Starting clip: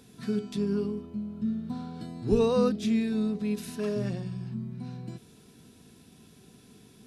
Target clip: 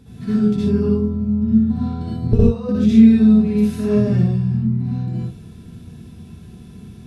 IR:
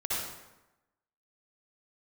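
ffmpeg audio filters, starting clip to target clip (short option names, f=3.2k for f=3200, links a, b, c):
-filter_complex "[0:a]bass=f=250:g=15,treble=f=4k:g=-5,asettb=1/sr,asplit=3[a][b][c];[a]atrim=end=2.274[d];[b]atrim=start=2.27:end=2.69,asetpts=PTS-STARTPTS,afade=t=in:d=0.004:c=qsin,afade=t=out:st=0.416:d=0.004:c=qsin,agate=range=-15dB:threshold=-12dB:ratio=16:detection=peak[e];[c]atrim=start=2.686[f];[d][e]acrossfade=d=0.004:c1=hsin:c2=qsin[g];[g][f]acrossfade=d=0.004:c1=qsin:c2=hsin[h];[1:a]atrim=start_sample=2205,afade=t=out:st=0.2:d=0.01,atrim=end_sample=9261[i];[h][i]afir=irnorm=-1:irlink=0,volume=1.5dB"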